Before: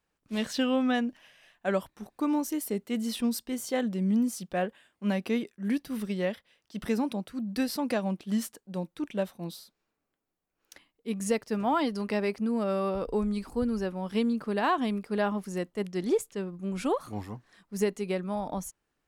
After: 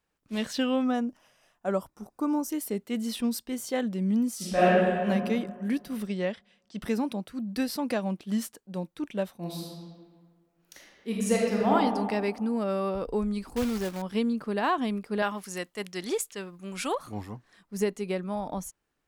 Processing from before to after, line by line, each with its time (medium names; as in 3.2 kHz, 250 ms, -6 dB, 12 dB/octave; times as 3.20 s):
0.84–2.49 s: time-frequency box 1.5–4.7 kHz -9 dB
4.36–5.05 s: reverb throw, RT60 1.9 s, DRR -11 dB
6.07–6.82 s: steep low-pass 8.8 kHz
9.39–11.73 s: reverb throw, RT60 1.7 s, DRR -3.5 dB
13.56–14.02 s: companded quantiser 4-bit
15.22–16.95 s: tilt shelf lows -7.5 dB, about 770 Hz